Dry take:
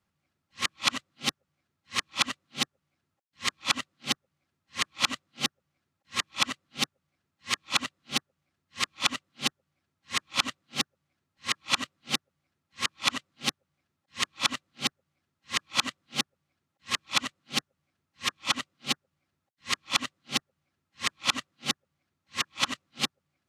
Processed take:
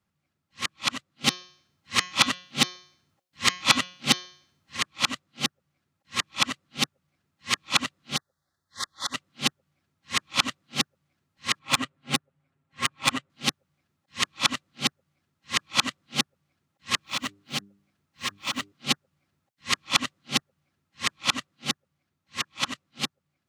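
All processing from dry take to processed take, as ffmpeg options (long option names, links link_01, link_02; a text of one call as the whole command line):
ffmpeg -i in.wav -filter_complex "[0:a]asettb=1/sr,asplit=3[link_01][link_02][link_03];[link_01]atrim=end=1.244[link_04];[link_02]atrim=start=1.24:end=4.77,asetpts=PTS-STARTPTS,afade=type=in:duration=0.004:curve=qsin,afade=type=out:start_time=3.526:duration=0.004:curve=qsin,bandreject=frequency=180.6:width_type=h:width=4,bandreject=frequency=361.2:width_type=h:width=4,bandreject=frequency=541.8:width_type=h:width=4,bandreject=frequency=722.4:width_type=h:width=4,bandreject=frequency=903:width_type=h:width=4,bandreject=frequency=1083.6:width_type=h:width=4,bandreject=frequency=1264.2:width_type=h:width=4,bandreject=frequency=1444.8:width_type=h:width=4,bandreject=frequency=1625.4:width_type=h:width=4,bandreject=frequency=1806:width_type=h:width=4,bandreject=frequency=1986.6:width_type=h:width=4,bandreject=frequency=2167.2:width_type=h:width=4,bandreject=frequency=2347.8:width_type=h:width=4,bandreject=frequency=2528.4:width_type=h:width=4,bandreject=frequency=2709:width_type=h:width=4,bandreject=frequency=2889.6:width_type=h:width=4,bandreject=frequency=3070.2:width_type=h:width=4,bandreject=frequency=3250.8:width_type=h:width=4,bandreject=frequency=3431.4:width_type=h:width=4,bandreject=frequency=3612:width_type=h:width=4,bandreject=frequency=3792.6:width_type=h:width=4,bandreject=frequency=3973.2:width_type=h:width=4,bandreject=frequency=4153.8:width_type=h:width=4,bandreject=frequency=4334.4:width_type=h:width=4,bandreject=frequency=4515:width_type=h:width=4,bandreject=frequency=4695.6:width_type=h:width=4,bandreject=frequency=4876.2:width_type=h:width=4,bandreject=frequency=5056.8:width_type=h:width=4,bandreject=frequency=5237.4:width_type=h:width=4,bandreject=frequency=5418:width_type=h:width=4,bandreject=frequency=5598.6:width_type=h:width=4,bandreject=frequency=5779.2:width_type=h:width=4,bandreject=frequency=5959.8:width_type=h:width=4,bandreject=frequency=6140.4:width_type=h:width=4,bandreject=frequency=6321:width_type=h:width=4,bandreject=frequency=6501.6:width_type=h:width=4,bandreject=frequency=6682.2:width_type=h:width=4,acontrast=82[link_05];[link_03]atrim=start=4.766[link_06];[link_04][link_05]acrossfade=duration=0.004:curve1=hsin:curve2=qsin[link_07];[link_07][link_06]acrossfade=duration=0.004:curve1=qsin:curve2=hsin,asettb=1/sr,asplit=3[link_08][link_09][link_10];[link_08]atrim=end=8.164[link_11];[link_09]atrim=start=8.16:end=9.14,asetpts=PTS-STARTPTS,afade=type=in:duration=0.004:curve=qsin,afade=type=out:start_time=0.976:duration=0.004:curve=qsin,acompressor=threshold=-29dB:ratio=2:attack=3.2:release=140:knee=1:detection=peak,asuperstop=centerf=2600:order=8:qfactor=1.7,equalizer=frequency=200:width_type=o:width=2.5:gain=-11.5[link_12];[link_10]atrim=start=9.136[link_13];[link_11][link_12]acrossfade=duration=0.004:curve1=hsin:curve2=qsin[link_14];[link_14][link_13]acrossfade=duration=0.004:curve1=qsin:curve2=hsin,asettb=1/sr,asplit=3[link_15][link_16][link_17];[link_15]atrim=end=11.594[link_18];[link_16]atrim=start=11.59:end=13.3,asetpts=PTS-STARTPTS,afade=type=in:duration=0.004:curve=qsin,afade=type=out:start_time=1.706:duration=0.004:curve=qsin,highshelf=frequency=6900:width_type=q:width=1.5:gain=8,aecho=1:1:7.4:0.64,atrim=end_sample=75411,adynamicsmooth=sensitivity=1.5:basefreq=3600[link_19];[link_17]atrim=start=13.296[link_20];[link_18][link_19]acrossfade=duration=0.004:curve1=hsin:curve2=qsin[link_21];[link_21][link_20]acrossfade=duration=0.004:curve1=qsin:curve2=hsin,asettb=1/sr,asplit=3[link_22][link_23][link_24];[link_22]atrim=end=17.014[link_25];[link_23]atrim=start=17.01:end=18.72,asetpts=PTS-STARTPTS,afade=type=in:duration=0.004:curve=qsin,afade=type=out:start_time=1.706:duration=0.004:curve=qsin,acrusher=bits=5:mode=log:mix=0:aa=0.000001,bandreject=frequency=99.97:width_type=h:width=4,bandreject=frequency=199.94:width_type=h:width=4,bandreject=frequency=299.91:width_type=h:width=4,bandreject=frequency=399.88:width_type=h:width=4,acompressor=threshold=-27dB:ratio=12:attack=3.2:release=140:knee=1:detection=peak[link_26];[link_24]atrim=start=18.716[link_27];[link_25][link_26]acrossfade=duration=0.004:curve1=hsin:curve2=qsin[link_28];[link_28][link_27]acrossfade=duration=0.004:curve1=qsin:curve2=hsin,equalizer=frequency=150:width=1.1:gain=3.5,dynaudnorm=framelen=310:gausssize=17:maxgain=11.5dB,volume=-1dB" out.wav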